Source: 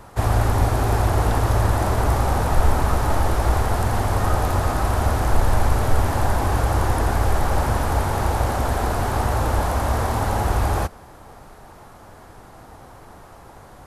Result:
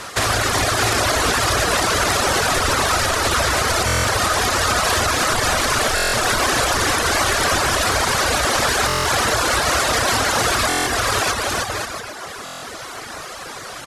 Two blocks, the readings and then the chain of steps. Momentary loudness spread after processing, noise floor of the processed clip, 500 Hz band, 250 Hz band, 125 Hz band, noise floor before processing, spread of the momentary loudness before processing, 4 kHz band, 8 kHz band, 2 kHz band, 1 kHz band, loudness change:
14 LU, -33 dBFS, +4.0 dB, +0.5 dB, -6.5 dB, -45 dBFS, 2 LU, +17.0 dB, +14.5 dB, +12.5 dB, +4.0 dB, +4.5 dB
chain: bouncing-ball echo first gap 0.45 s, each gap 0.7×, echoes 5; in parallel at +2 dB: compressor, threshold -22 dBFS, peak gain reduction 13 dB; on the sum: LPF 5600 Hz 12 dB/oct; tilt +4.5 dB/oct; on a send: tape echo 0.309 s, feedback 74%, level -13 dB, low-pass 2600 Hz; on the sum: reverb removal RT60 1 s; bell 850 Hz -9.5 dB 0.45 oct; limiter -17 dBFS, peak gain reduction 7.5 dB; stuck buffer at 3.86/5.95/8.87/10.68/12.44, samples 1024, times 7; gain +8.5 dB

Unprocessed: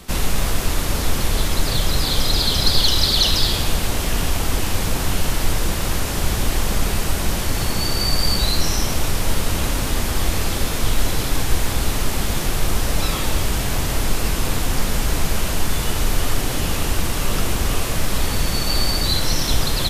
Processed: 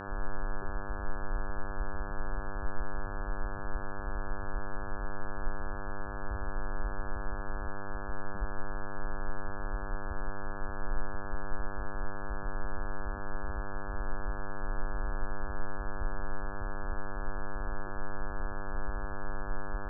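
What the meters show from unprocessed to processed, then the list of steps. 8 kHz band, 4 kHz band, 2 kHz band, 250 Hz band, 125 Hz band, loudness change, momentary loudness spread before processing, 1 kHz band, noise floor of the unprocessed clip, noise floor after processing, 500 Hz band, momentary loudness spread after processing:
under -40 dB, under -40 dB, -13.5 dB, -17.0 dB, -18.5 dB, -18.5 dB, 5 LU, -11.0 dB, -23 dBFS, -37 dBFS, -13.5 dB, 2 LU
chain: loudest bins only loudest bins 1; ladder low-pass 550 Hz, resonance 60%; buzz 100 Hz, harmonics 17, -46 dBFS -1 dB/oct; gain +4.5 dB

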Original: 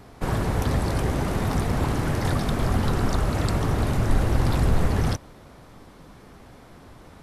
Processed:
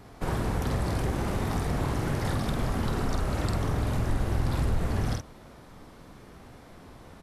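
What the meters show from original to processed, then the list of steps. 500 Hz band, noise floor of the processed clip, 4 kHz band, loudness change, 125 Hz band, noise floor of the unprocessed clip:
-5.0 dB, -50 dBFS, -5.0 dB, -5.0 dB, -5.0 dB, -48 dBFS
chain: doubler 48 ms -4.5 dB; compressor 2:1, threshold -23 dBFS, peak gain reduction 6.5 dB; gain -3 dB

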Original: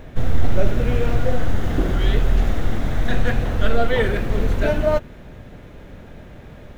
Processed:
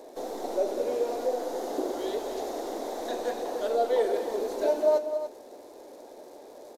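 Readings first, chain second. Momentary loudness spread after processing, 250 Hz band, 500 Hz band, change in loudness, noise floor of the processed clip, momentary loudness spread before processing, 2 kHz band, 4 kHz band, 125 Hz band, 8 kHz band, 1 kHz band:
22 LU, -11.0 dB, -2.0 dB, -7.0 dB, -48 dBFS, 21 LU, -17.0 dB, -9.5 dB, under -40 dB, n/a, -3.5 dB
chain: inverse Chebyshev high-pass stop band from 170 Hz, stop band 40 dB; crackle 350/s -46 dBFS; in parallel at -3 dB: compressor, threshold -32 dBFS, peak gain reduction 16 dB; on the sum: band shelf 2000 Hz -15.5 dB; on a send: loudspeakers at several distances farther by 67 m -12 dB, 99 m -11 dB; on the sum: downsampling 32000 Hz; gain -4 dB

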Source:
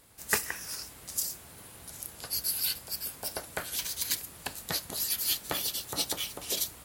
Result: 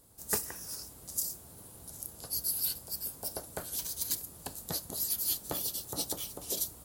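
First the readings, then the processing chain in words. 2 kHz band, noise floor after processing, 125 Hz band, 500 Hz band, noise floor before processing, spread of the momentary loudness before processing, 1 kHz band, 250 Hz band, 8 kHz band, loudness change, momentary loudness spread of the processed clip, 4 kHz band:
-12.5 dB, -52 dBFS, 0.0 dB, -2.0 dB, -50 dBFS, 12 LU, -5.0 dB, -0.5 dB, -2.0 dB, -2.5 dB, 12 LU, -7.0 dB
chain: bell 2200 Hz -14.5 dB 1.8 oct

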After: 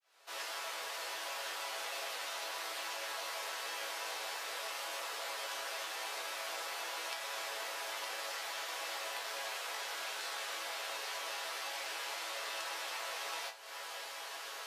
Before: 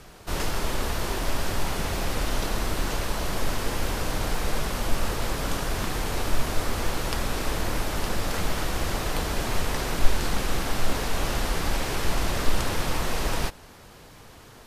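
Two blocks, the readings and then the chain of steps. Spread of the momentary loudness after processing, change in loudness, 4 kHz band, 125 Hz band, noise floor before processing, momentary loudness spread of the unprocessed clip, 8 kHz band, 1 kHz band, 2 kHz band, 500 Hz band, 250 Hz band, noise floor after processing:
1 LU, -10.5 dB, -6.5 dB, under -40 dB, -48 dBFS, 2 LU, -9.0 dB, -10.0 dB, -7.5 dB, -14.0 dB, -31.5 dB, -46 dBFS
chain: opening faded in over 1.98 s; HPF 540 Hz 24 dB/oct; bell 3200 Hz +5.5 dB 2.4 oct; compressor 12:1, threshold -42 dBFS, peak gain reduction 19 dB; resonator bank A2 major, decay 0.27 s; gain +16.5 dB

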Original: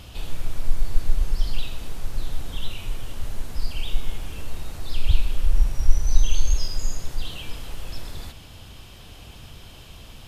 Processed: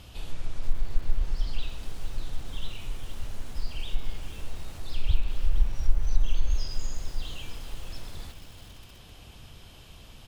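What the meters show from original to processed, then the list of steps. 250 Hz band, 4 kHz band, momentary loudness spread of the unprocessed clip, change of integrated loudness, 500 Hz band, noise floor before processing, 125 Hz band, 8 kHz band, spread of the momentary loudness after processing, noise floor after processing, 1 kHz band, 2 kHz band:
-5.0 dB, -6.0 dB, 18 LU, -5.5 dB, -5.0 dB, -44 dBFS, -5.0 dB, n/a, 18 LU, -49 dBFS, -5.0 dB, -5.5 dB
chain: feedback echo 0.559 s, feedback 58%, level -24 dB; treble ducked by the level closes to 1200 Hz, closed at -4 dBFS; lo-fi delay 0.469 s, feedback 35%, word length 6-bit, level -13 dB; gain -5.5 dB

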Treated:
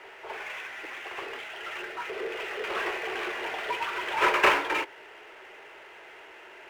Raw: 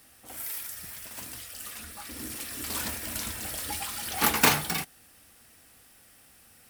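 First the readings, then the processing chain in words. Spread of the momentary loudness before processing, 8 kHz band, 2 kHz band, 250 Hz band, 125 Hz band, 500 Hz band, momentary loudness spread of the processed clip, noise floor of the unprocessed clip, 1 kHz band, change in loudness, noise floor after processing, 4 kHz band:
17 LU, -16.5 dB, +5.0 dB, -3.0 dB, -16.0 dB, +7.5 dB, 25 LU, -57 dBFS, +4.5 dB, +0.5 dB, -49 dBFS, -2.0 dB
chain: pre-echo 0.268 s -21 dB; mistuned SSB +140 Hz 220–2700 Hz; power-law curve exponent 0.7

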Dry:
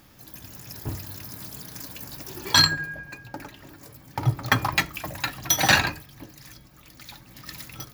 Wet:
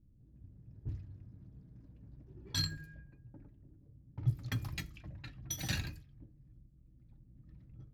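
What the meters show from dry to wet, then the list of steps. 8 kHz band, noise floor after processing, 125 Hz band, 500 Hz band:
-18.0 dB, -63 dBFS, -8.5 dB, -22.5 dB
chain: low-pass opened by the level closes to 400 Hz, open at -21 dBFS; passive tone stack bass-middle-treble 10-0-1; gain +3.5 dB

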